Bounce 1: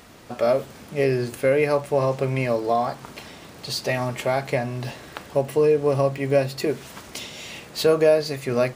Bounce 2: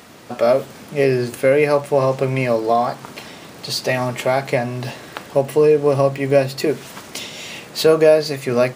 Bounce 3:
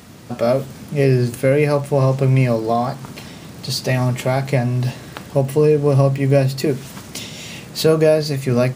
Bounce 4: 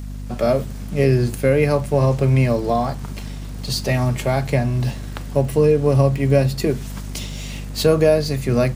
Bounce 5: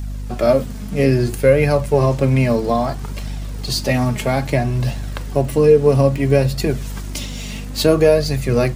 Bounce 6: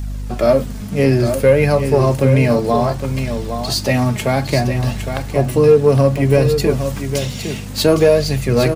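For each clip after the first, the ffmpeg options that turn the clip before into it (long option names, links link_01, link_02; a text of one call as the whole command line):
ffmpeg -i in.wav -af "highpass=110,volume=5dB" out.wav
ffmpeg -i in.wav -af "bass=frequency=250:gain=13,treble=frequency=4000:gain=4,volume=-3dB" out.wav
ffmpeg -i in.wav -filter_complex "[0:a]acrossover=split=140|5200[link_01][link_02][link_03];[link_02]aeval=exprs='sgn(val(0))*max(abs(val(0))-0.00473,0)':channel_layout=same[link_04];[link_01][link_04][link_03]amix=inputs=3:normalize=0,aeval=exprs='val(0)+0.0398*(sin(2*PI*50*n/s)+sin(2*PI*2*50*n/s)/2+sin(2*PI*3*50*n/s)/3+sin(2*PI*4*50*n/s)/4+sin(2*PI*5*50*n/s)/5)':channel_layout=same,volume=-1dB" out.wav
ffmpeg -i in.wav -af "flanger=delay=1.1:depth=3.7:regen=48:speed=0.6:shape=triangular,volume=6.5dB" out.wav
ffmpeg -i in.wav -filter_complex "[0:a]asoftclip=type=tanh:threshold=-2.5dB,asplit=2[link_01][link_02];[link_02]aecho=0:1:810:0.398[link_03];[link_01][link_03]amix=inputs=2:normalize=0,volume=2dB" out.wav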